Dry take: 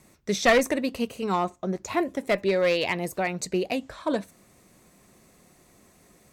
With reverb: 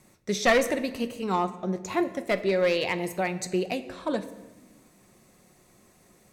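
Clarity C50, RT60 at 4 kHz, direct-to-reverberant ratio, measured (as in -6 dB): 14.0 dB, 0.90 s, 9.5 dB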